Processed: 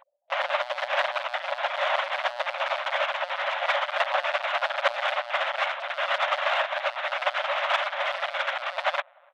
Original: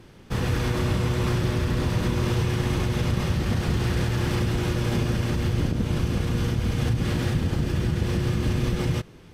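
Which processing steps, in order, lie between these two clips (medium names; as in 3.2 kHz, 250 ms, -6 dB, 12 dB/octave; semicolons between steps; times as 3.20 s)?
median filter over 15 samples; loudest bins only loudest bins 16; comb 4.7 ms, depth 32%; in parallel at -9 dB: bit crusher 5-bit; on the sum: tilt EQ +3 dB/octave; LPC vocoder at 8 kHz pitch kept; on a send: filtered feedback delay 292 ms, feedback 67%, low-pass 910 Hz, level -23.5 dB; on the sum: overdrive pedal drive 37 dB, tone 1.4 kHz, clips at -2.5 dBFS; brick-wall FIR high-pass 540 Hz; upward expansion 2.5:1, over -26 dBFS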